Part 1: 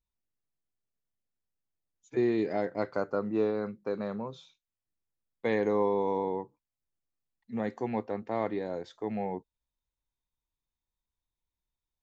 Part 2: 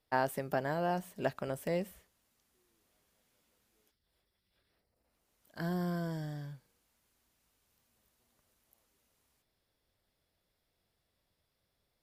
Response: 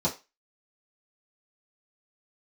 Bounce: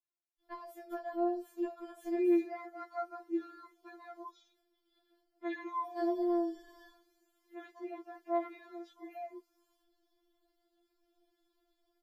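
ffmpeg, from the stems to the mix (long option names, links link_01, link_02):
-filter_complex "[0:a]highpass=frequency=600:poles=1,highshelf=frequency=2800:gain=-11,volume=2dB,asplit=2[link_01][link_02];[1:a]acompressor=threshold=-41dB:ratio=16,adelay=400,volume=0.5dB,asplit=2[link_03][link_04];[link_04]volume=-3.5dB[link_05];[link_02]apad=whole_len=548142[link_06];[link_03][link_06]sidechaincompress=threshold=-41dB:ratio=8:attack=16:release=390[link_07];[2:a]atrim=start_sample=2205[link_08];[link_05][link_08]afir=irnorm=-1:irlink=0[link_09];[link_01][link_07][link_09]amix=inputs=3:normalize=0,equalizer=frequency=2100:width=0.36:gain=-4.5,afftfilt=real='re*4*eq(mod(b,16),0)':imag='im*4*eq(mod(b,16),0)':win_size=2048:overlap=0.75"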